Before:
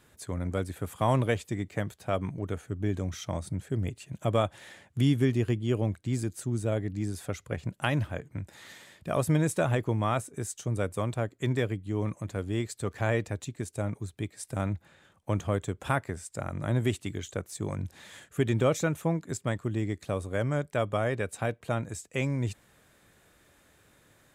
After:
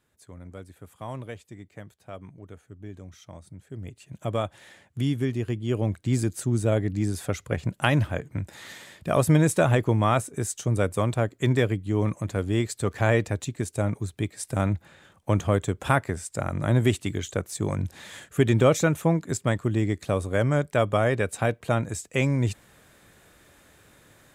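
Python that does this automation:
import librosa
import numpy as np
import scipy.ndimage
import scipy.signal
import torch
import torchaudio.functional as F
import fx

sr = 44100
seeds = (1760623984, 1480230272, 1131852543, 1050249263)

y = fx.gain(x, sr, db=fx.line((3.57, -11.0), (4.17, -1.5), (5.46, -1.5), (6.13, 6.0)))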